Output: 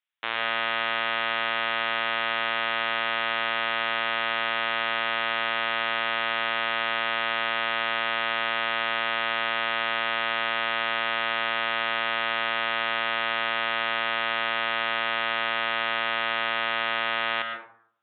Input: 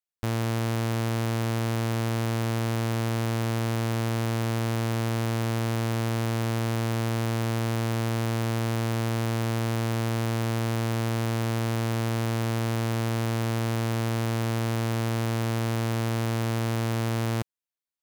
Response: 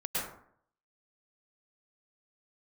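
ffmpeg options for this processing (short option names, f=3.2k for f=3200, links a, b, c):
-filter_complex "[0:a]highpass=1.3k,asplit=2[a][b];[1:a]atrim=start_sample=2205[c];[b][c]afir=irnorm=-1:irlink=0,volume=-6.5dB[d];[a][d]amix=inputs=2:normalize=0,aresample=8000,aresample=44100,volume=8.5dB"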